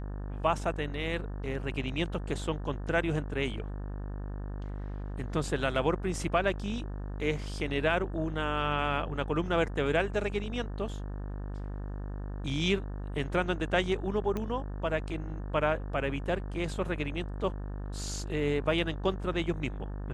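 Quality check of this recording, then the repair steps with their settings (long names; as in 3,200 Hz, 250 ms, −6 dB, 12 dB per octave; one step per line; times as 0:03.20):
mains buzz 50 Hz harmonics 36 −37 dBFS
0:14.37: click −21 dBFS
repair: click removal
hum removal 50 Hz, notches 36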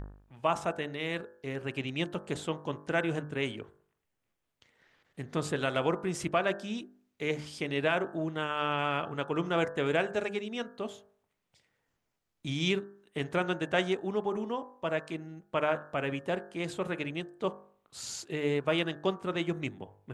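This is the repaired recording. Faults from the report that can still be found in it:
none of them is left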